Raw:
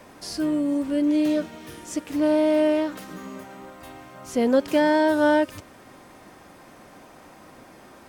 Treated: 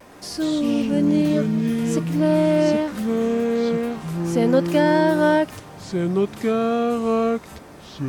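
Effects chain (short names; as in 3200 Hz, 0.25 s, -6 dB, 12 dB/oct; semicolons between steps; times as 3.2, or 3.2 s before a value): echoes that change speed 0.114 s, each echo -5 st, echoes 2; vibrato 0.61 Hz 26 cents; gain +1.5 dB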